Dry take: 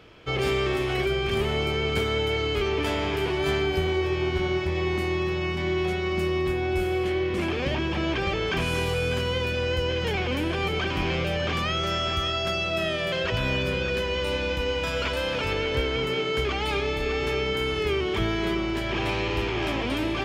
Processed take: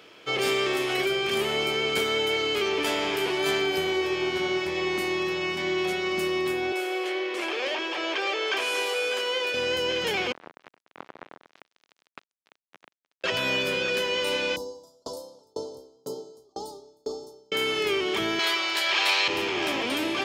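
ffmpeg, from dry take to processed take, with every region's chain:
ffmpeg -i in.wav -filter_complex "[0:a]asettb=1/sr,asplit=3[link_01][link_02][link_03];[link_01]atrim=end=6.724[link_04];[link_02]atrim=start=6.72:end=9.54,asetpts=PTS-STARTPTS,afade=type=in:duration=0.004:curve=qsin,afade=type=out:start_time=2.816:duration=0.004:curve=qsin,highpass=frequency=380:width=0.5412,highpass=frequency=380:width=1.3066,highshelf=frequency=8700:gain=-9[link_05];[link_03]atrim=start=9.536[link_06];[link_04][link_05]acrossfade=duration=0.004:curve1=hsin:curve2=qsin[link_07];[link_07][link_06]acrossfade=duration=0.004:curve1=qsin:curve2=hsin,asettb=1/sr,asplit=3[link_08][link_09][link_10];[link_08]atrim=end=10.324[link_11];[link_09]atrim=start=10.32:end=13.24,asetpts=PTS-STARTPTS,afade=type=in:duration=0.004:curve=qsin,afade=type=out:start_time=2.916:duration=0.004:curve=qsin,lowpass=frequency=1300:width=0.5412,lowpass=frequency=1300:width=1.3066,acrusher=bits=2:mix=0:aa=0.5[link_12];[link_10]atrim=start=13.236[link_13];[link_11][link_12]acrossfade=duration=0.004:curve1=hsin:curve2=qsin[link_14];[link_14][link_13]acrossfade=duration=0.004:curve1=qsin:curve2=hsin,asettb=1/sr,asplit=3[link_15][link_16][link_17];[link_15]atrim=end=14.564[link_18];[link_16]atrim=start=14.56:end=17.52,asetpts=PTS-STARTPTS,afade=type=in:duration=0.004:curve=qsin,afade=type=out:start_time=2.956:duration=0.004:curve=qsin,asuperstop=centerf=2100:order=8:qfactor=0.6,aeval=exprs='val(0)*pow(10,-37*if(lt(mod(2*n/s,1),2*abs(2)/1000),1-mod(2*n/s,1)/(2*abs(2)/1000),(mod(2*n/s,1)-2*abs(2)/1000)/(1-2*abs(2)/1000))/20)':channel_layout=same[link_19];[link_17]atrim=start=17.516[link_20];[link_18][link_19]acrossfade=duration=0.004:curve1=hsin:curve2=qsin[link_21];[link_21][link_20]acrossfade=duration=0.004:curve1=qsin:curve2=hsin,asettb=1/sr,asplit=3[link_22][link_23][link_24];[link_22]atrim=end=18.394[link_25];[link_23]atrim=start=18.39:end=19.28,asetpts=PTS-STARTPTS,afade=type=in:duration=0.004:curve=qsin,afade=type=out:start_time=0.886:duration=0.004:curve=qsin,equalizer=frequency=4200:width=3.5:gain=6.5,acontrast=25,highpass=850[link_26];[link_24]atrim=start=19.276[link_27];[link_25][link_26]acrossfade=duration=0.004:curve1=hsin:curve2=qsin[link_28];[link_28][link_27]acrossfade=duration=0.004:curve1=qsin:curve2=hsin,highpass=260,highshelf=frequency=3800:gain=9" out.wav

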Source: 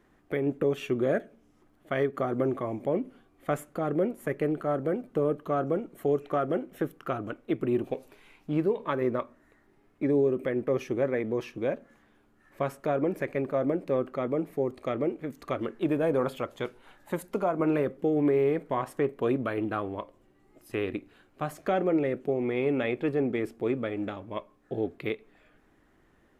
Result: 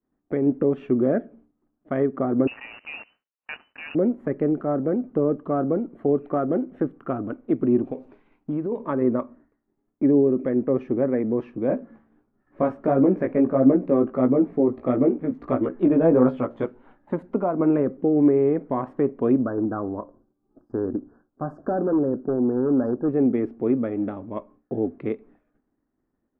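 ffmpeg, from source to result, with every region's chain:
ffmpeg -i in.wav -filter_complex "[0:a]asettb=1/sr,asplit=3[link_01][link_02][link_03];[link_01]atrim=end=2.474[link_04];[link_02]atrim=start=2.47:end=3.95,asetpts=PTS-STARTPTS,afade=type=in:duration=0.004:curve=qsin,afade=type=out:start_time=1.476:duration=0.004:curve=qsin,highpass=59,acrusher=bits=7:dc=4:mix=0:aa=0.000001,lowpass=frequency=2600:width_type=q:width=0.5098,lowpass=frequency=2600:width_type=q:width=0.6013,lowpass=frequency=2600:width_type=q:width=0.9,lowpass=frequency=2600:width_type=q:width=2.563,afreqshift=-3000[link_05];[link_03]atrim=start=3.946[link_06];[link_04][link_05]acrossfade=duration=0.004:curve1=hsin:curve2=qsin[link_07];[link_07][link_06]acrossfade=duration=0.004:curve1=qsin:curve2=hsin,asettb=1/sr,asplit=3[link_08][link_09][link_10];[link_08]atrim=end=7.874[link_11];[link_09]atrim=start=7.87:end=8.72,asetpts=PTS-STARTPTS,afade=type=in:duration=0.004:curve=qsin,afade=type=out:start_time=0.846:duration=0.004:curve=qsin,lowpass=7900,aemphasis=mode=production:type=50kf,acompressor=threshold=-30dB:ratio=3:attack=3.2:release=140:knee=1:detection=peak[link_12];[link_10]atrim=start=8.716[link_13];[link_11][link_12]acrossfade=duration=0.004:curve1=hsin:curve2=qsin[link_14];[link_14][link_13]acrossfade=duration=0.004:curve1=qsin:curve2=hsin,asettb=1/sr,asplit=3[link_15][link_16][link_17];[link_15]atrim=end=11.684[link_18];[link_16]atrim=start=11.68:end=16.65,asetpts=PTS-STARTPTS,afade=type=in:duration=0.004:curve=qsin,afade=type=out:start_time=4.966:duration=0.004:curve=qsin,acontrast=64,flanger=delay=15:depth=3.4:speed=1.5[link_19];[link_17]atrim=start=16.646[link_20];[link_18][link_19]acrossfade=duration=0.004:curve1=hsin:curve2=qsin[link_21];[link_21][link_20]acrossfade=duration=0.004:curve1=qsin:curve2=hsin,asettb=1/sr,asplit=3[link_22][link_23][link_24];[link_22]atrim=end=19.394[link_25];[link_23]atrim=start=19.39:end=23.09,asetpts=PTS-STARTPTS,afade=type=in:duration=0.004:curve=qsin,afade=type=out:start_time=3.696:duration=0.004:curve=qsin,asoftclip=type=hard:threshold=-23dB,asuperstop=centerf=2800:order=20:qfactor=0.95[link_26];[link_24]atrim=start=23.086[link_27];[link_25][link_26]acrossfade=duration=0.004:curve1=hsin:curve2=qsin[link_28];[link_28][link_27]acrossfade=duration=0.004:curve1=qsin:curve2=hsin,lowpass=1200,agate=range=-33dB:threshold=-52dB:ratio=3:detection=peak,equalizer=frequency=250:width=2.4:gain=8.5,volume=3dB" out.wav

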